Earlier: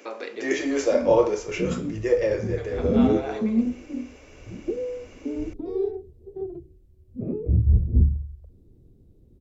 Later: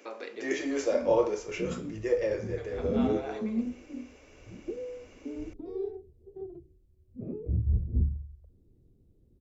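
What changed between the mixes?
speech −6.0 dB
background −8.5 dB

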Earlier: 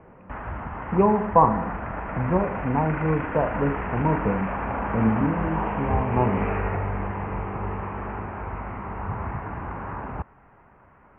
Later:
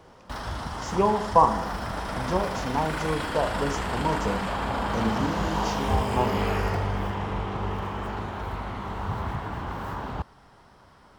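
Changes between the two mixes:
speech: add low-shelf EQ 270 Hz −11 dB
master: remove Butterworth low-pass 2,600 Hz 72 dB per octave

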